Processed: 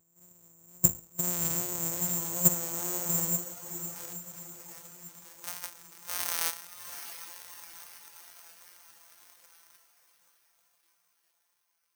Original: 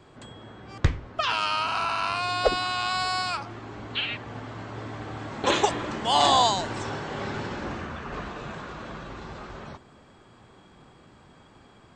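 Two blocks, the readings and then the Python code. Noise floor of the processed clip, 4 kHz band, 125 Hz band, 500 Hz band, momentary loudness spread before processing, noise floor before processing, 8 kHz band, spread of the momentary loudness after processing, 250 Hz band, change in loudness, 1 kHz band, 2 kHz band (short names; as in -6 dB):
-75 dBFS, -16.5 dB, -7.0 dB, -15.0 dB, 17 LU, -54 dBFS, +8.5 dB, 20 LU, -6.0 dB, -3.0 dB, -21.0 dB, -15.5 dB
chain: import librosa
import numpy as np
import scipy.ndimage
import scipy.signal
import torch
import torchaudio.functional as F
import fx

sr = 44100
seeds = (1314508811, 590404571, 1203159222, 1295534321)

p1 = np.r_[np.sort(x[:len(x) // 256 * 256].reshape(-1, 256), axis=1).ravel(), x[len(x) // 256 * 256:]]
p2 = p1 + 10.0 ** (-22.0 / 20.0) * np.pad(p1, (int(114 * sr / 1000.0), 0))[:len(p1)]
p3 = fx.wow_flutter(p2, sr, seeds[0], rate_hz=2.1, depth_cents=53.0)
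p4 = fx.rider(p3, sr, range_db=4, speed_s=2.0)
p5 = p3 + F.gain(torch.from_numpy(p4), 0.0).numpy()
p6 = fx.filter_sweep_highpass(p5, sr, from_hz=66.0, to_hz=1100.0, start_s=3.23, end_s=3.96, q=0.71)
p7 = p6 + fx.echo_diffused(p6, sr, ms=721, feedback_pct=58, wet_db=-7.0, dry=0)
p8 = (np.kron(p7[::6], np.eye(6)[0]) * 6)[:len(p7)]
p9 = fx.spectral_expand(p8, sr, expansion=1.5)
y = F.gain(torch.from_numpy(p9), -17.5).numpy()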